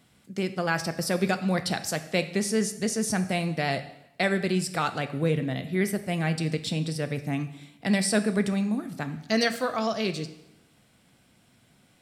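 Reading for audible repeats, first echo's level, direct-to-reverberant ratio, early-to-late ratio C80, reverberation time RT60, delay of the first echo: no echo, no echo, 9.0 dB, 15.0 dB, 0.85 s, no echo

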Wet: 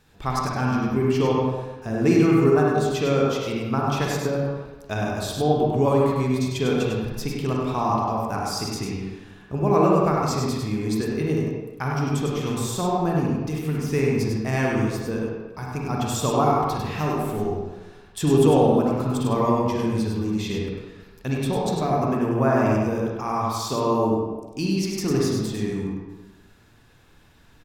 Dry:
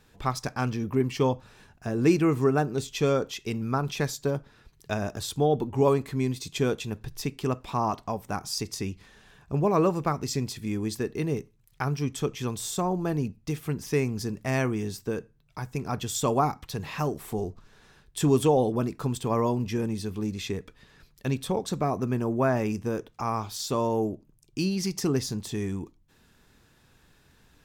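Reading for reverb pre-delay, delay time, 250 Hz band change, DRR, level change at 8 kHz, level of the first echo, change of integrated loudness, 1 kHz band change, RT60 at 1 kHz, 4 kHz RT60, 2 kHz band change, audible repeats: 38 ms, 100 ms, +5.5 dB, -3.5 dB, +1.5 dB, -4.5 dB, +5.0 dB, +6.0 dB, 1.2 s, 0.80 s, +5.0 dB, 1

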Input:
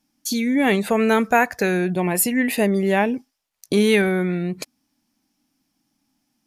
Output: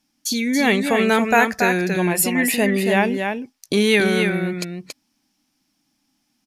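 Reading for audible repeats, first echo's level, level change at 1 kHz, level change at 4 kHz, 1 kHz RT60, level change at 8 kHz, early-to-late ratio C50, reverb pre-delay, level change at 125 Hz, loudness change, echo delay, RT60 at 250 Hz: 1, -5.5 dB, +1.5 dB, +5.0 dB, no reverb, +2.5 dB, no reverb, no reverb, +0.5 dB, +1.0 dB, 279 ms, no reverb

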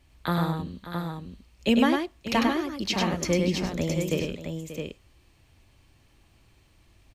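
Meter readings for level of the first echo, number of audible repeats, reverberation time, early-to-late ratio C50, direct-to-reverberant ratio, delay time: -4.0 dB, 3, no reverb, no reverb, no reverb, 100 ms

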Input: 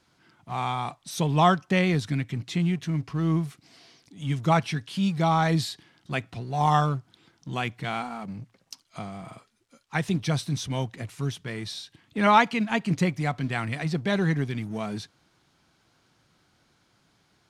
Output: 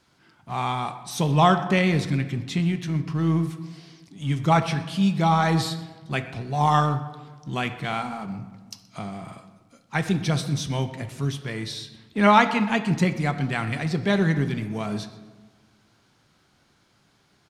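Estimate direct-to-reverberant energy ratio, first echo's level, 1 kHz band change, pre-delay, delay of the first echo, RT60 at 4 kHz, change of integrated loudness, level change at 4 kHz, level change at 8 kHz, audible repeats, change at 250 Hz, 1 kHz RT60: 8.5 dB, -20.5 dB, +2.5 dB, 5 ms, 125 ms, 0.80 s, +2.5 dB, +2.5 dB, +2.0 dB, 1, +3.0 dB, 1.3 s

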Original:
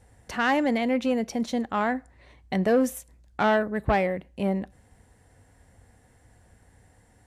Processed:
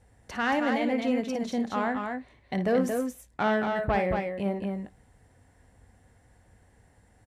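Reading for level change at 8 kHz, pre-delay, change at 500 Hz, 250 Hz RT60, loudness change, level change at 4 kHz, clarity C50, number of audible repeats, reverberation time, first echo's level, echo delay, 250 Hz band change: -4.5 dB, no reverb, -2.0 dB, no reverb, -2.5 dB, -3.0 dB, no reverb, 2, no reverb, -10.5 dB, 55 ms, -2.0 dB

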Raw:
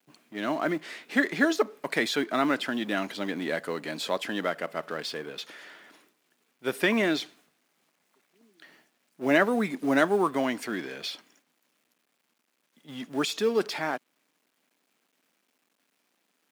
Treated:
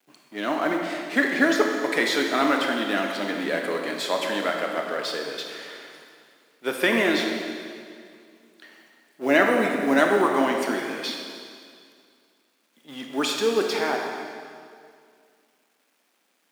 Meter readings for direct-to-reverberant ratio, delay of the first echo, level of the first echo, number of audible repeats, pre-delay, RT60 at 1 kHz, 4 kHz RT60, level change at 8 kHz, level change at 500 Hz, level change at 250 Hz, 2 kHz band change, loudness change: 1.5 dB, no echo, no echo, no echo, 21 ms, 2.2 s, 2.1 s, +5.0 dB, +4.5 dB, +3.5 dB, +5.0 dB, +4.0 dB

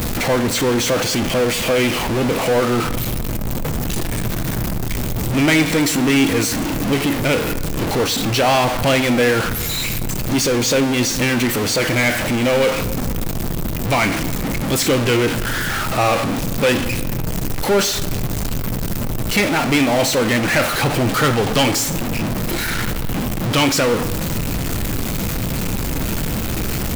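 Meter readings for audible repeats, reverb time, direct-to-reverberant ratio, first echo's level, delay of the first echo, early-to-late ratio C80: no echo, 1.7 s, 11.0 dB, no echo, no echo, 15.0 dB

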